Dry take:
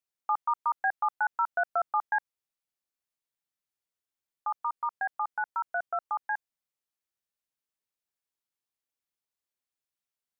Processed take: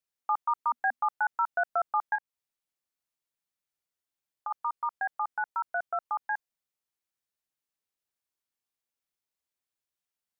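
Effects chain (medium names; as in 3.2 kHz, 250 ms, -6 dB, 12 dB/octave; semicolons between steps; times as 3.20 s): 0.57–1.02 s: peaking EQ 240 Hz +7 dB -> +15 dB 0.39 oct; 2.15–4.51 s: compression 4:1, threshold -33 dBFS, peak gain reduction 8 dB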